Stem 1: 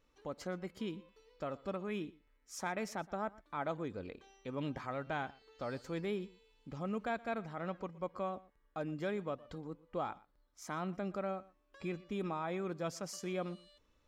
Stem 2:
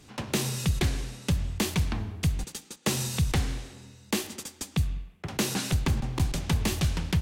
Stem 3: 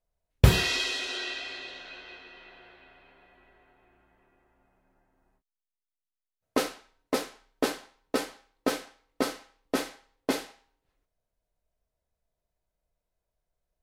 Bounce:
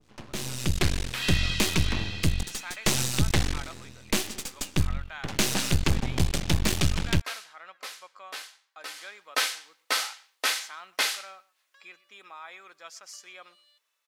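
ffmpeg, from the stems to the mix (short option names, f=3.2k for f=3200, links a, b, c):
-filter_complex "[0:a]highpass=1.4k,volume=-8.5dB[a];[1:a]aeval=exprs='max(val(0),0)':c=same,volume=-5.5dB[b];[2:a]acrossover=split=3700[c][d];[d]acompressor=threshold=-43dB:ratio=4:attack=1:release=60[e];[c][e]amix=inputs=2:normalize=0,highpass=1.3k,highshelf=f=4k:g=8.5,adelay=700,volume=-4dB,afade=t=in:st=8.94:d=0.26:silence=0.223872[f];[a][b][f]amix=inputs=3:normalize=0,highshelf=f=11k:g=-6,dynaudnorm=f=170:g=7:m=11dB,adynamicequalizer=threshold=0.00708:dfrequency=1600:dqfactor=0.7:tfrequency=1600:tqfactor=0.7:attack=5:release=100:ratio=0.375:range=2:mode=boostabove:tftype=highshelf"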